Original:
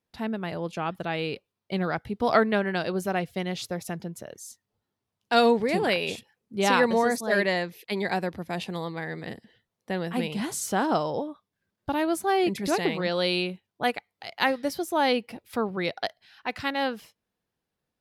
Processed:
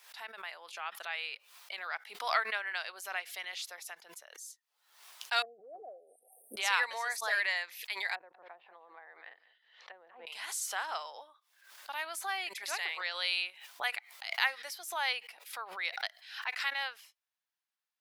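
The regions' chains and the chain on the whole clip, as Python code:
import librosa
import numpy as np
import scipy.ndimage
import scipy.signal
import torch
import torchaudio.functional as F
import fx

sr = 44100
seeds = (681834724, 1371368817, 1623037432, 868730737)

y = fx.chain(x, sr, fx.brickwall_bandstop(low_hz=780.0, high_hz=8400.0),
    fx.env_lowpass_down(base_hz=330.0, full_db=-18.5), at=(5.42, 6.57))
y = fx.chain(y, sr, fx.lowpass(hz=4100.0, slope=24),
    fx.env_lowpass_down(base_hz=520.0, full_db=-27.5),
    fx.echo_single(ms=193, db=-17.0), at=(8.15, 10.27))
y = scipy.signal.sosfilt(scipy.signal.bessel(4, 1300.0, 'highpass', norm='mag', fs=sr, output='sos'), y)
y = fx.dynamic_eq(y, sr, hz=2100.0, q=1.8, threshold_db=-44.0, ratio=4.0, max_db=4)
y = fx.pre_swell(y, sr, db_per_s=87.0)
y = y * 10.0 ** (-4.5 / 20.0)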